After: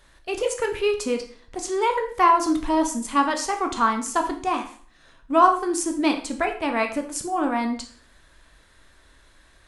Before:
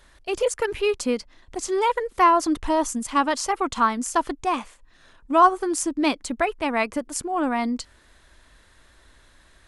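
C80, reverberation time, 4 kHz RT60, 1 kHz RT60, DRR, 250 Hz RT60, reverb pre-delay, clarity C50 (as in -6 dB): 13.5 dB, 0.50 s, 0.45 s, 0.50 s, 4.0 dB, 0.50 s, 5 ms, 10.0 dB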